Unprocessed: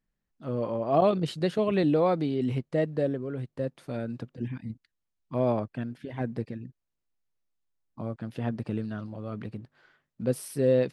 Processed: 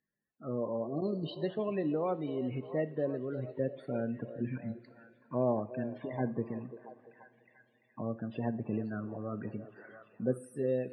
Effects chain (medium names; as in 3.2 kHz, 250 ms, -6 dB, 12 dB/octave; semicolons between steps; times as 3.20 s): time-frequency box 0.86–1.25 s, 420–3800 Hz -17 dB; gain riding within 4 dB 0.5 s; loudest bins only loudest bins 32; band-pass 130–6500 Hz; repeats whose band climbs or falls 342 ms, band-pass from 460 Hz, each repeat 0.7 oct, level -11 dB; two-slope reverb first 0.39 s, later 3.9 s, from -20 dB, DRR 12 dB; tape noise reduction on one side only encoder only; trim -5 dB